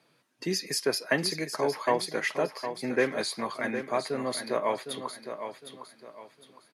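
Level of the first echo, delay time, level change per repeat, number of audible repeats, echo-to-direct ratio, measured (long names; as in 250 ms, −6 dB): −9.0 dB, 759 ms, −10.0 dB, 3, −8.5 dB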